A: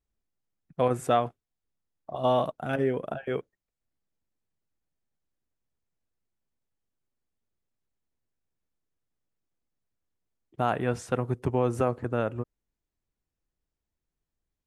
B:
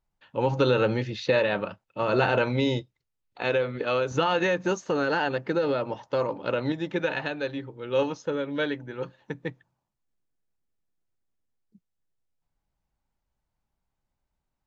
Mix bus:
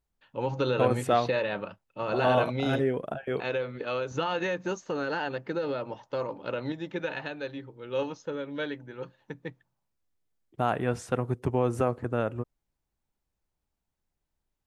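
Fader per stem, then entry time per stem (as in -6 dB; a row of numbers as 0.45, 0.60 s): -0.5, -5.5 dB; 0.00, 0.00 s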